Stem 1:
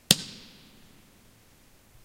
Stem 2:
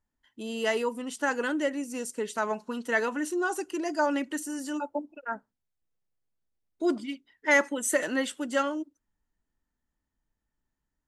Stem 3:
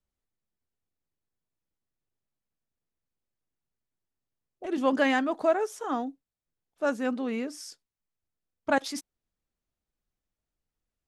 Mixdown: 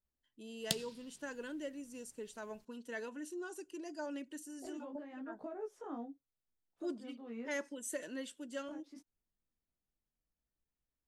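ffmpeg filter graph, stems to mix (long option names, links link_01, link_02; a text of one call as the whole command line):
ffmpeg -i stem1.wav -i stem2.wav -i stem3.wav -filter_complex "[0:a]adelay=600,volume=-16dB[link_01];[1:a]equalizer=frequency=800:width_type=o:width=0.33:gain=-10,equalizer=frequency=1250:width_type=o:width=0.33:gain=-11,equalizer=frequency=2000:width_type=o:width=0.33:gain=-6,volume=-13.5dB,asplit=2[link_02][link_03];[2:a]acrossover=split=240|490[link_04][link_05][link_06];[link_04]acompressor=threshold=-46dB:ratio=4[link_07];[link_05]acompressor=threshold=-39dB:ratio=4[link_08];[link_06]acompressor=threshold=-43dB:ratio=4[link_09];[link_07][link_08][link_09]amix=inputs=3:normalize=0,highshelf=frequency=2600:gain=-11.5,flanger=delay=15.5:depth=6.1:speed=0.75,volume=-3.5dB[link_10];[link_03]apad=whole_len=488335[link_11];[link_10][link_11]sidechaincompress=threshold=-49dB:ratio=10:attack=8.9:release=517[link_12];[link_01][link_02][link_12]amix=inputs=3:normalize=0" out.wav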